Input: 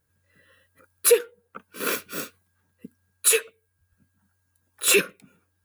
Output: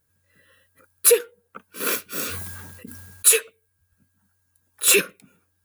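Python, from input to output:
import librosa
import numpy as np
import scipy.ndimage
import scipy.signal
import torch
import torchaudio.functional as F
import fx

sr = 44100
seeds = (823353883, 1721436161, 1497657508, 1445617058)

y = fx.high_shelf(x, sr, hz=5100.0, db=5.5)
y = fx.sustainer(y, sr, db_per_s=31.0, at=(2.05, 3.27))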